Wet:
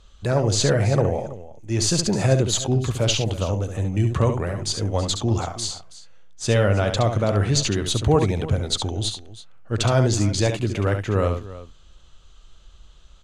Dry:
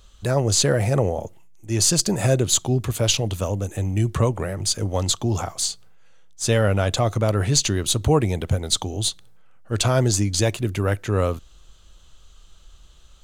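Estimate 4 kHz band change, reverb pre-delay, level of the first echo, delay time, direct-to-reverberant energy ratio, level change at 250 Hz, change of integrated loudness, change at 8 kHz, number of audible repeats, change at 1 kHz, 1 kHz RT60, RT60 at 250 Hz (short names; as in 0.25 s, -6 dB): -1.5 dB, none, -7.5 dB, 69 ms, none, +0.5 dB, -0.5 dB, -4.5 dB, 2, +0.5 dB, none, none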